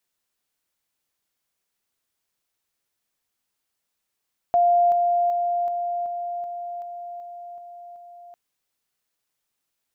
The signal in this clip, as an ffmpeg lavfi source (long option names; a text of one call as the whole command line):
ffmpeg -f lavfi -i "aevalsrc='pow(10,(-14.5-3*floor(t/0.38))/20)*sin(2*PI*699*t)':duration=3.8:sample_rate=44100" out.wav